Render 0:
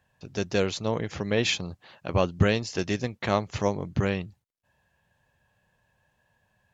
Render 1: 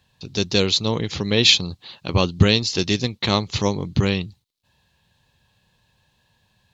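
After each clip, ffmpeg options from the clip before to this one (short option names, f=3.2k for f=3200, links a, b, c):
-af "equalizer=f=630:t=o:w=0.67:g=-8,equalizer=f=1.6k:t=o:w=0.67:g=-7,equalizer=f=4k:t=o:w=0.67:g=12,volume=7dB"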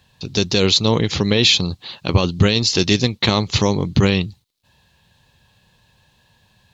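-af "alimiter=limit=-10.5dB:level=0:latency=1:release=39,volume=6.5dB"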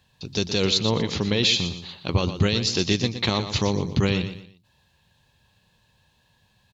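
-af "aecho=1:1:119|238|357:0.299|0.0955|0.0306,volume=-6.5dB"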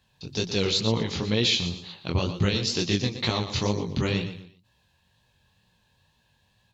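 -af "flanger=delay=17:depth=6.7:speed=2.1"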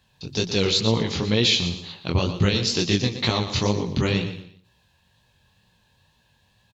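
-af "aecho=1:1:184:0.0944,volume=3.5dB"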